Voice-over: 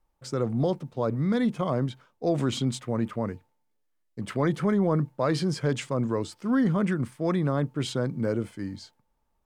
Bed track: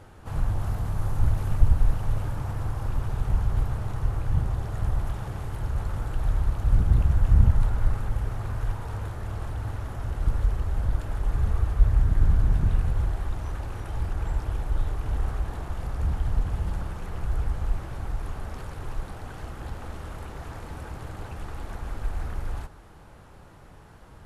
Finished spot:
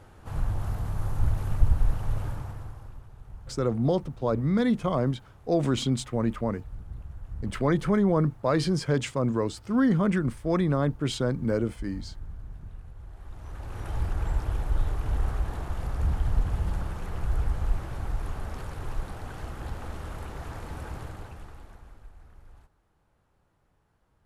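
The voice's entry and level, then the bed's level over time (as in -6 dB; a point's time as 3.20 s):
3.25 s, +1.0 dB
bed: 2.30 s -2.5 dB
3.09 s -20 dB
12.99 s -20 dB
13.87 s 0 dB
20.98 s 0 dB
22.15 s -20.5 dB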